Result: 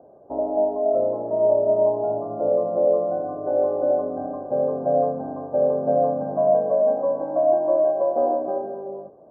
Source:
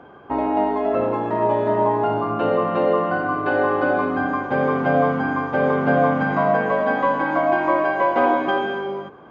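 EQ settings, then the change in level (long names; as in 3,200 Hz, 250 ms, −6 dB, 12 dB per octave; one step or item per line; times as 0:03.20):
transistor ladder low-pass 660 Hz, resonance 75%
+1.5 dB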